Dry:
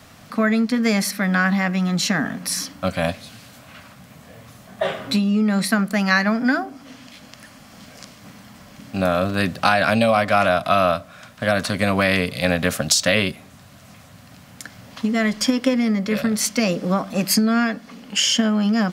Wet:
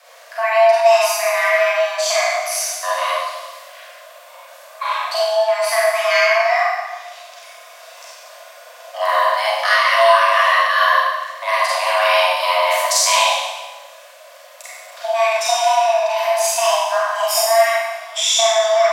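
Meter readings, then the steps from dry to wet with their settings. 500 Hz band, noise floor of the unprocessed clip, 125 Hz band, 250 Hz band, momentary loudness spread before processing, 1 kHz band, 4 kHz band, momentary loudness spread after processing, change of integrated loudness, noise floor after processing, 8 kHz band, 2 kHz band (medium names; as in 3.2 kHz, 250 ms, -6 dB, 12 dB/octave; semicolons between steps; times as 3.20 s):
+7.0 dB, -46 dBFS, under -40 dB, under -40 dB, 9 LU, +9.0 dB, +4.5 dB, 13 LU, +4.0 dB, -42 dBFS, +5.0 dB, +4.5 dB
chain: hum notches 50/100/150/200 Hz; Schroeder reverb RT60 1.2 s, combs from 31 ms, DRR -7 dB; frequency shift +450 Hz; trim -4 dB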